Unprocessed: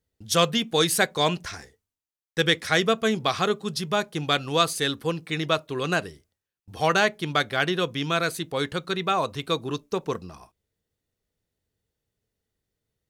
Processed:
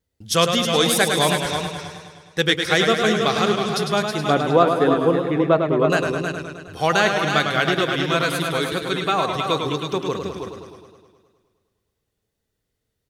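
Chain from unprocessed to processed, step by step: 4.3–5.9 EQ curve 120 Hz 0 dB, 300 Hz +7 dB, 800 Hz +6 dB, 5900 Hz -21 dB; echo 0.32 s -7 dB; vibrato 2.2 Hz 30 cents; warbling echo 0.104 s, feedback 66%, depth 76 cents, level -6.5 dB; gain +2.5 dB

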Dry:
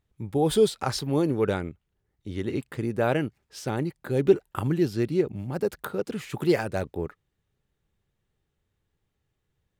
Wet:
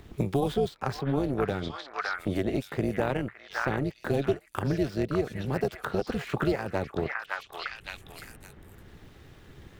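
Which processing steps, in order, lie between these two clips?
median filter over 5 samples; AM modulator 280 Hz, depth 60%; delay with a stepping band-pass 0.562 s, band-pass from 1600 Hz, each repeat 1.4 oct, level -1 dB; three-band squash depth 100%

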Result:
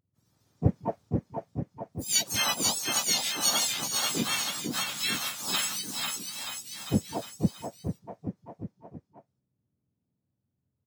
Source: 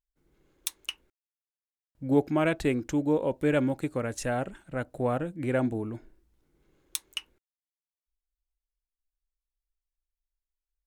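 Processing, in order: spectrum mirrored in octaves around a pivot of 1400 Hz; bouncing-ball echo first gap 0.49 s, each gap 0.9×, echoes 5; harmoniser -7 st -8 dB, -3 st -6 dB, +5 st -5 dB

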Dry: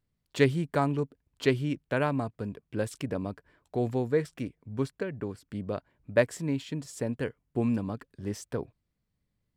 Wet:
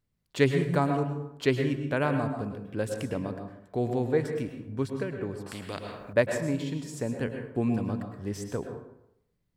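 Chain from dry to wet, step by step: plate-style reverb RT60 0.79 s, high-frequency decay 0.55×, pre-delay 95 ms, DRR 5 dB; 5.46–6.13 spectral compressor 2:1

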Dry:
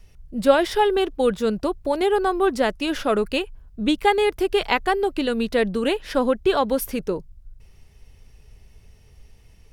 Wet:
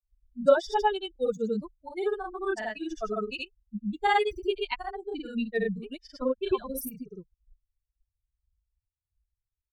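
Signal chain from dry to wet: per-bin expansion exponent 3; grains 97 ms, grains 27/s, spray 84 ms, pitch spread up and down by 0 st

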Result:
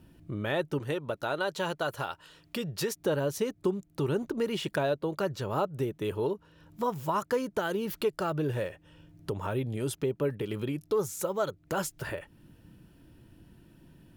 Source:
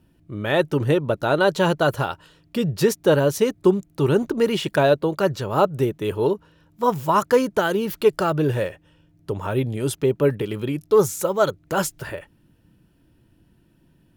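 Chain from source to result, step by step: 0.79–2.96 low shelf 490 Hz -8.5 dB; compressor 2:1, threshold -41 dBFS, peak gain reduction 16 dB; gain +3 dB

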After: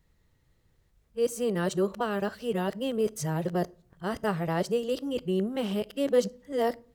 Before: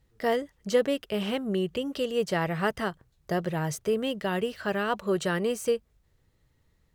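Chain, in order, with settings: whole clip reversed; dynamic EQ 2100 Hz, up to -7 dB, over -45 dBFS, Q 0.9; on a send: reverb RT60 0.50 s, pre-delay 6 ms, DRR 19.5 dB

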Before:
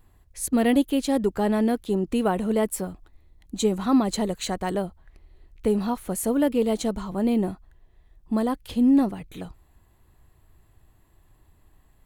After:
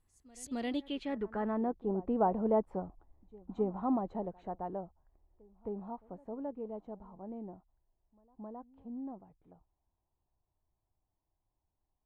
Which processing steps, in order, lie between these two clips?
Doppler pass-by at 2.65, 9 m/s, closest 8.5 m; low-pass sweep 10000 Hz -> 850 Hz, 0.19–1.75; pre-echo 0.266 s -22 dB; gain -8.5 dB

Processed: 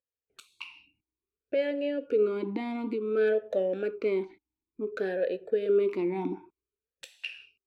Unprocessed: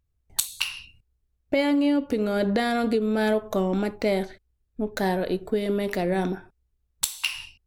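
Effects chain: AGC gain up to 11.5 dB; vowel sweep e-u 0.56 Hz; gain -3 dB

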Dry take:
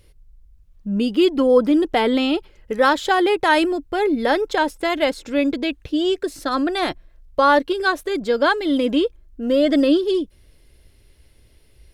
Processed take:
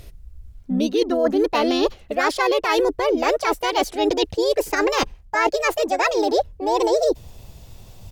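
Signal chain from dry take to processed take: speed glide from 122% -> 172%; reverse; compressor 8:1, threshold -27 dBFS, peak gain reduction 16.5 dB; reverse; harmoniser -5 st -2 dB; gain +8 dB

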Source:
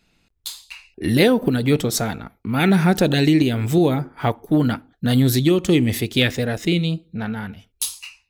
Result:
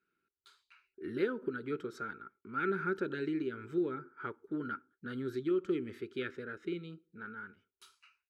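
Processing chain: double band-pass 720 Hz, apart 1.8 oct; comb 1.3 ms, depth 33%; gain -6 dB

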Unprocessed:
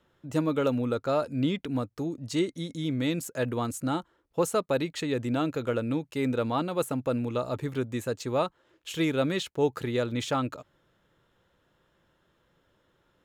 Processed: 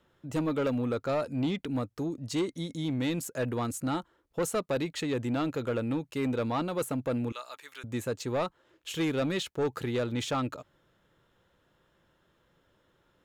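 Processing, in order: 7.32–7.84 HPF 1500 Hz 12 dB/oct; soft clip -23 dBFS, distortion -14 dB

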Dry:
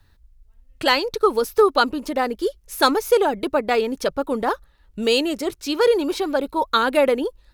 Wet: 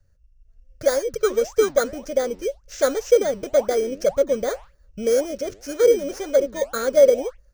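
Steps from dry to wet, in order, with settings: FFT order left unsorted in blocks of 16 samples; EQ curve 140 Hz 0 dB, 350 Hz -12 dB, 560 Hz +7 dB, 880 Hz -18 dB, 1500 Hz -3 dB, 3800 Hz -12 dB, 6100 Hz +1 dB, 10000 Hz -18 dB; flange 1.9 Hz, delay 1.7 ms, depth 9.7 ms, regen +90%; AGC gain up to 6.5 dB; dynamic EQ 2400 Hz, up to -4 dB, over -37 dBFS, Q 0.97

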